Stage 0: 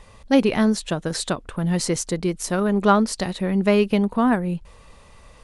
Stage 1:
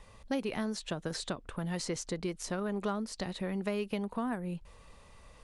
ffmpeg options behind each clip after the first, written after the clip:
ffmpeg -i in.wav -filter_complex "[0:a]acrossover=split=450|7800[link_01][link_02][link_03];[link_01]acompressor=threshold=-28dB:ratio=4[link_04];[link_02]acompressor=threshold=-29dB:ratio=4[link_05];[link_03]acompressor=threshold=-50dB:ratio=4[link_06];[link_04][link_05][link_06]amix=inputs=3:normalize=0,volume=-7.5dB" out.wav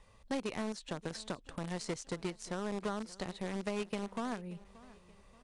ffmpeg -i in.wav -filter_complex "[0:a]asplit=2[link_01][link_02];[link_02]acrusher=bits=4:mix=0:aa=0.000001,volume=-4.5dB[link_03];[link_01][link_03]amix=inputs=2:normalize=0,aecho=1:1:579|1158|1737:0.1|0.045|0.0202,aresample=22050,aresample=44100,volume=-7dB" out.wav

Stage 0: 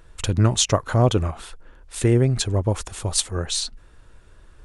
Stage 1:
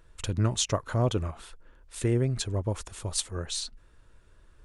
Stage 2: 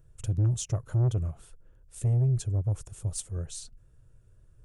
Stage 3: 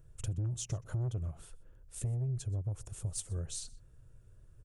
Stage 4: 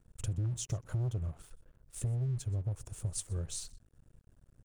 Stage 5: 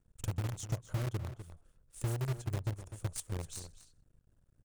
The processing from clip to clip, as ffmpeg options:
ffmpeg -i in.wav -af "bandreject=frequency=770:width=13,volume=-8dB" out.wav
ffmpeg -i in.wav -af "equalizer=frequency=125:width_type=o:width=1:gain=12,equalizer=frequency=250:width_type=o:width=1:gain=-8,equalizer=frequency=1000:width_type=o:width=1:gain=-10,equalizer=frequency=2000:width_type=o:width=1:gain=-9,equalizer=frequency=4000:width_type=o:width=1:gain=-11,asoftclip=type=tanh:threshold=-18dB,volume=-2dB" out.wav
ffmpeg -i in.wav -af "acompressor=threshold=-33dB:ratio=6,aecho=1:1:124:0.0708" out.wav
ffmpeg -i in.wav -af "aeval=exprs='sgn(val(0))*max(abs(val(0))-0.00133,0)':channel_layout=same,volume=1.5dB" out.wav
ffmpeg -i in.wav -filter_complex "[0:a]asplit=2[link_01][link_02];[link_02]acrusher=bits=4:mix=0:aa=0.000001,volume=-2dB[link_03];[link_01][link_03]amix=inputs=2:normalize=0,asplit=2[link_04][link_05];[link_05]adelay=250.7,volume=-11dB,highshelf=frequency=4000:gain=-5.64[link_06];[link_04][link_06]amix=inputs=2:normalize=0,volume=-6.5dB" out.wav

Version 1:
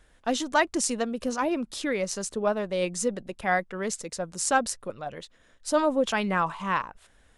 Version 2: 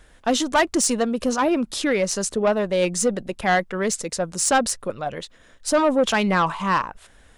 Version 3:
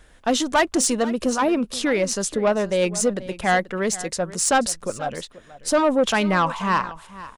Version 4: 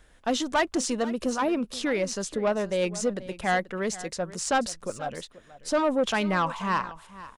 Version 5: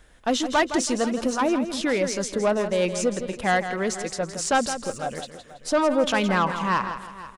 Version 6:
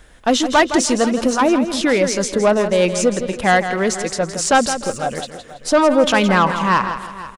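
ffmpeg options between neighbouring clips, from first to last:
ffmpeg -i in.wav -af "asoftclip=type=tanh:threshold=-19.5dB,volume=8dB" out.wav
ffmpeg -i in.wav -af "aecho=1:1:484:0.141" out.wav
ffmpeg -i in.wav -filter_complex "[0:a]acrossover=split=7100[link_01][link_02];[link_02]acompressor=threshold=-38dB:ratio=4:attack=1:release=60[link_03];[link_01][link_03]amix=inputs=2:normalize=0,volume=-5.5dB" out.wav
ffmpeg -i in.wav -af "aecho=1:1:164|328|492|656:0.316|0.104|0.0344|0.0114,volume=3dB" out.wav
ffmpeg -i in.wav -filter_complex "[0:a]asplit=2[link_01][link_02];[link_02]adelay=300,highpass=300,lowpass=3400,asoftclip=type=hard:threshold=-20dB,volume=-21dB[link_03];[link_01][link_03]amix=inputs=2:normalize=0,volume=7.5dB" out.wav

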